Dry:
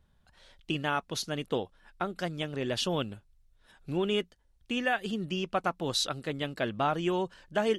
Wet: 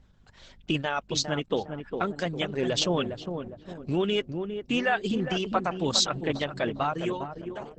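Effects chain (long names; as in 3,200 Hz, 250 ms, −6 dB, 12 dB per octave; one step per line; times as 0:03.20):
fade-out on the ending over 1.40 s
0:00.83–0:02.23: dynamic equaliser 1,100 Hz, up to −4 dB, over −42 dBFS, Q 2.9
in parallel at +2 dB: brickwall limiter −24.5 dBFS, peak gain reduction 9 dB
on the sum: reverb reduction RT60 1.2 s
mains hum 50 Hz, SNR 30 dB
on a send: feedback echo with a low-pass in the loop 405 ms, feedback 48%, low-pass 800 Hz, level −6 dB
on the sum: Opus 10 kbit/s 48,000 Hz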